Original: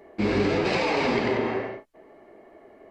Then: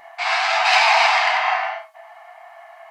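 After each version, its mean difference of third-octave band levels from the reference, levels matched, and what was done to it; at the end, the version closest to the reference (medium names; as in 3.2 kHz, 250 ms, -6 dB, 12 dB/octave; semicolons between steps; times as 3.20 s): 14.0 dB: in parallel at -5 dB: saturation -25.5 dBFS, distortion -10 dB; on the sum: brick-wall FIR high-pass 640 Hz; gated-style reverb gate 130 ms falling, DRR 3 dB; trim +9 dB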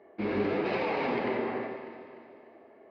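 3.5 dB: high-pass 250 Hz 6 dB/octave; distance through air 310 m; echo whose repeats swap between lows and highs 149 ms, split 1.2 kHz, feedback 67%, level -8 dB; trim -4 dB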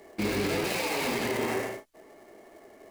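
7.0 dB: dead-time distortion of 0.06 ms; treble shelf 2.6 kHz +9.5 dB; peak limiter -18 dBFS, peak gain reduction 9 dB; trim -2 dB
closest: second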